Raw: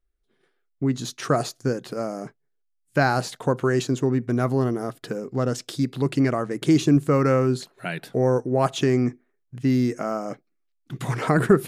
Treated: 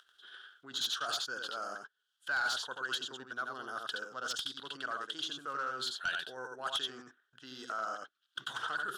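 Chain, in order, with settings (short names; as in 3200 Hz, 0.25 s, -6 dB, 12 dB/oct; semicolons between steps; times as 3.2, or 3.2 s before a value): reverse; compressor 8:1, threshold -29 dBFS, peak gain reduction 18.5 dB; reverse; dynamic EQ 2000 Hz, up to -6 dB, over -54 dBFS, Q 1.6; upward compressor, threshold -41 dBFS; double band-pass 2200 Hz, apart 1.1 oct; tilt +2 dB/oct; on a send: echo 0.109 s -4 dB; on the sum: sine folder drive 8 dB, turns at -27 dBFS; tempo 1.3×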